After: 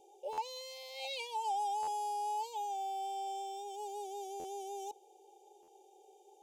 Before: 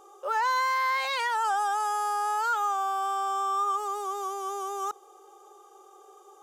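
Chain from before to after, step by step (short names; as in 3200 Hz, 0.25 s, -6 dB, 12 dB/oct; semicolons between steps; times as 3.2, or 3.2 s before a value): Chebyshev band-stop 880–2300 Hz, order 5; high shelf 9400 Hz -6 dB; stuck buffer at 0.32/1.82/4.39/5.62, samples 512, times 4; gain -6 dB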